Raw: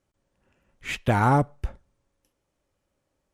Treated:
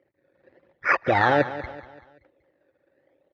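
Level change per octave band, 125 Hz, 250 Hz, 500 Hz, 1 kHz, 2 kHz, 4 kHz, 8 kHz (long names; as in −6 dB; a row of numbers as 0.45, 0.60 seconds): −9.0 dB, −3.0 dB, +5.0 dB, +2.0 dB, +8.5 dB, +1.5 dB, below −10 dB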